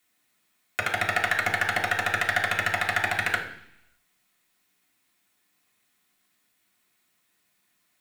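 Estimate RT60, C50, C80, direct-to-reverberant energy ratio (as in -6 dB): 0.70 s, 8.0 dB, 11.0 dB, -4.0 dB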